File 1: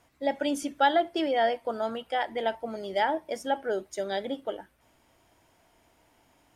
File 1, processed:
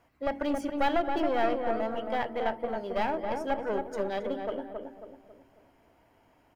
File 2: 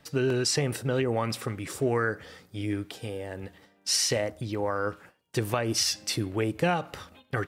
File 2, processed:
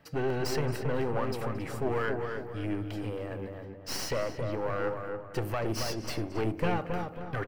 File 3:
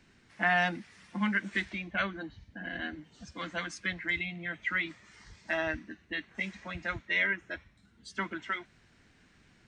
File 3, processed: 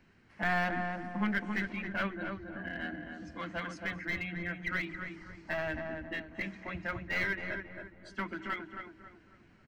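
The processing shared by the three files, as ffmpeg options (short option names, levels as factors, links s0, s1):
-filter_complex "[0:a]asplit=2[s0][s1];[s1]aecho=0:1:223:0.0891[s2];[s0][s2]amix=inputs=2:normalize=0,aeval=exprs='clip(val(0),-1,0.0266)':c=same,equalizer=f=8300:w=0.51:g=-12,bandreject=f=3600:w=9.3,bandreject=f=46.39:t=h:w=4,bandreject=f=92.78:t=h:w=4,bandreject=f=139.17:t=h:w=4,bandreject=f=185.56:t=h:w=4,bandreject=f=231.95:t=h:w=4,bandreject=f=278.34:t=h:w=4,bandreject=f=324.73:t=h:w=4,bandreject=f=371.12:t=h:w=4,bandreject=f=417.51:t=h:w=4,asplit=2[s3][s4];[s4]adelay=272,lowpass=f=1400:p=1,volume=0.631,asplit=2[s5][s6];[s6]adelay=272,lowpass=f=1400:p=1,volume=0.44,asplit=2[s7][s8];[s8]adelay=272,lowpass=f=1400:p=1,volume=0.44,asplit=2[s9][s10];[s10]adelay=272,lowpass=f=1400:p=1,volume=0.44,asplit=2[s11][s12];[s12]adelay=272,lowpass=f=1400:p=1,volume=0.44,asplit=2[s13][s14];[s14]adelay=272,lowpass=f=1400:p=1,volume=0.44[s15];[s5][s7][s9][s11][s13][s15]amix=inputs=6:normalize=0[s16];[s3][s16]amix=inputs=2:normalize=0"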